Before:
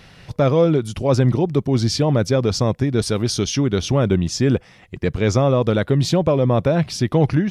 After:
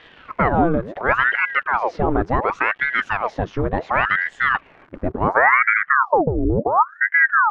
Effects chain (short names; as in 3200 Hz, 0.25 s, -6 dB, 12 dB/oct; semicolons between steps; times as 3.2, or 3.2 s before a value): crackle 210/s -29 dBFS; low-pass sweep 1300 Hz -> 200 Hz, 4.89–6.16; ring modulator with a swept carrier 990 Hz, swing 85%, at 0.7 Hz